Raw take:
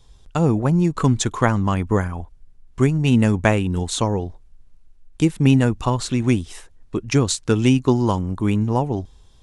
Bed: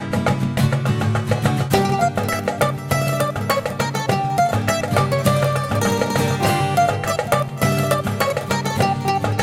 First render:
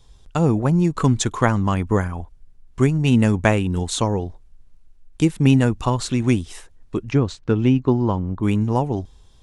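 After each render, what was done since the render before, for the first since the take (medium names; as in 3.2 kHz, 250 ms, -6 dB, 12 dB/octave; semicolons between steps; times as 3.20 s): 7.11–8.43 s: tape spacing loss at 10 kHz 27 dB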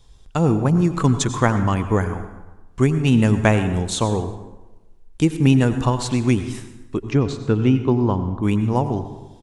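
feedback delay 121 ms, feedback 52%, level -23.5 dB; plate-style reverb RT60 1.1 s, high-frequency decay 0.6×, pre-delay 75 ms, DRR 10 dB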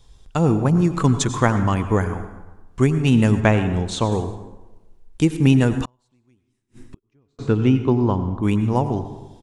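3.40–4.12 s: distance through air 69 m; 5.85–7.39 s: inverted gate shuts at -25 dBFS, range -42 dB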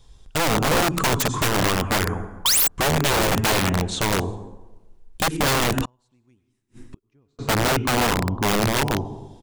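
2.45–2.68 s: painted sound rise 930–8200 Hz -16 dBFS; integer overflow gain 14.5 dB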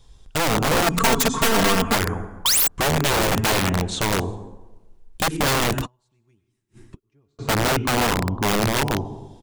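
0.86–1.95 s: comb 4.4 ms, depth 98%; 5.74–7.45 s: comb of notches 250 Hz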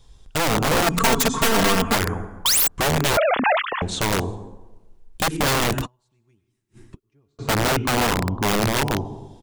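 3.17–3.82 s: formants replaced by sine waves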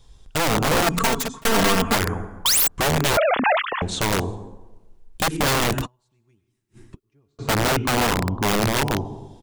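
0.75–1.45 s: fade out equal-power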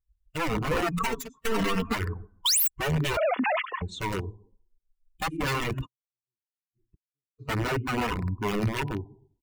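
expander on every frequency bin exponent 2; peak limiter -18.5 dBFS, peak gain reduction 7.5 dB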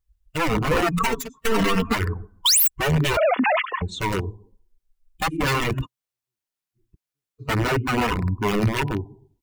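trim +6 dB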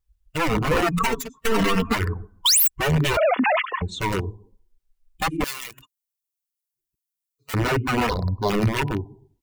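5.44–7.54 s: pre-emphasis filter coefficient 0.97; 8.09–8.50 s: FFT filter 100 Hz 0 dB, 340 Hz -7 dB, 560 Hz +12 dB, 2.6 kHz -22 dB, 4.1 kHz +15 dB, 7.5 kHz -10 dB, 16 kHz -1 dB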